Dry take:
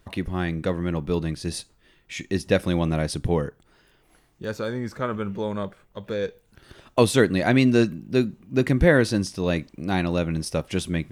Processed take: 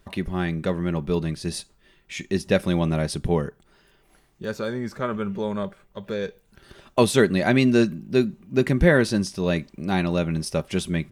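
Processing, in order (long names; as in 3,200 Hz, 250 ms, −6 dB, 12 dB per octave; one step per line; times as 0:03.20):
comb filter 5.1 ms, depth 32%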